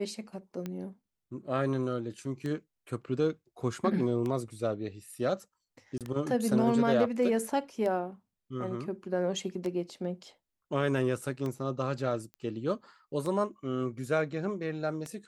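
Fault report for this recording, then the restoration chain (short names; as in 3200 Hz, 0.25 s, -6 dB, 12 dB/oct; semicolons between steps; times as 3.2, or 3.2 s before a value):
tick 33 1/3 rpm -23 dBFS
5.98–6.01 gap 27 ms
12.34 pop -32 dBFS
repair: de-click; interpolate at 5.98, 27 ms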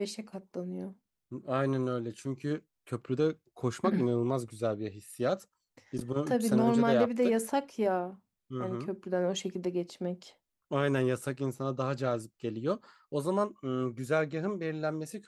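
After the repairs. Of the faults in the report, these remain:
none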